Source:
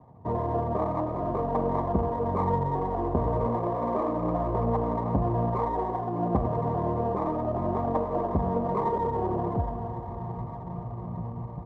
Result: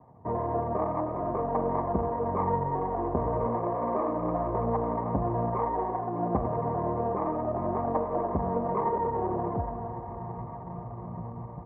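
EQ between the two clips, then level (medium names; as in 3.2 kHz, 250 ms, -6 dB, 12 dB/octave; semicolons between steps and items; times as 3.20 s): low-pass 2.3 kHz 24 dB/octave; bass shelf 220 Hz -5.5 dB; 0.0 dB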